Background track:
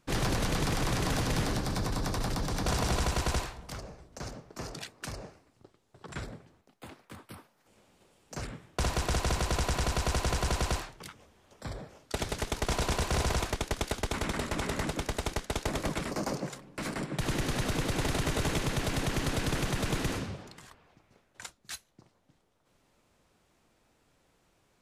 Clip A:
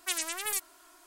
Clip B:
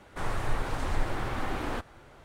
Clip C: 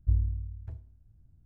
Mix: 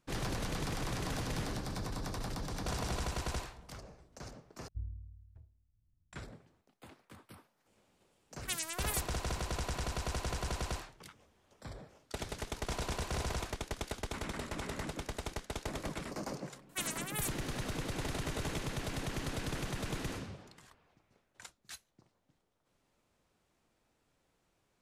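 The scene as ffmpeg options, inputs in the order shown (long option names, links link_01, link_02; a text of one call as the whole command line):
ffmpeg -i bed.wav -i cue0.wav -i cue1.wav -i cue2.wav -filter_complex "[1:a]asplit=2[link_01][link_02];[0:a]volume=-7.5dB[link_03];[link_02]equalizer=frequency=4900:width_type=o:width=0.27:gain=-7.5[link_04];[link_03]asplit=2[link_05][link_06];[link_05]atrim=end=4.684[link_07];[3:a]atrim=end=1.45,asetpts=PTS-STARTPTS,volume=-16dB[link_08];[link_06]atrim=start=6.126[link_09];[link_01]atrim=end=1.06,asetpts=PTS-STARTPTS,volume=-5.5dB,afade=type=in:duration=0.004:curve=hsin,afade=type=out:start_time=1.056:duration=0.004:curve=hsin,adelay=8410[link_10];[link_04]atrim=end=1.06,asetpts=PTS-STARTPTS,volume=-6dB,afade=type=in:duration=0.004:curve=hsin,afade=type=out:start_time=1.056:duration=0.004:curve=hsin,adelay=16690[link_11];[link_07][link_08]acrossfade=duration=0.004:curve1=hsin:curve2=hsin[link_12];[link_12][link_09]acrossfade=duration=0.004:curve1=hsin:curve2=hsin[link_13];[link_13][link_10][link_11]amix=inputs=3:normalize=0" out.wav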